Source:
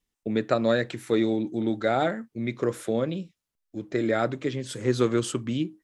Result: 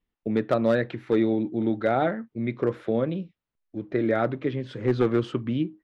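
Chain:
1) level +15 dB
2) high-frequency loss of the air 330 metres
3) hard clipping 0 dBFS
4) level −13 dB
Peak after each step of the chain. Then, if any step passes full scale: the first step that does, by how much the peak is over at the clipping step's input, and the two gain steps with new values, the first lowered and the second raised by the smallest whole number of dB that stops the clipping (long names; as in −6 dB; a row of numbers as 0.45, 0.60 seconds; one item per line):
+6.0, +5.0, 0.0, −13.0 dBFS
step 1, 5.0 dB
step 1 +10 dB, step 4 −8 dB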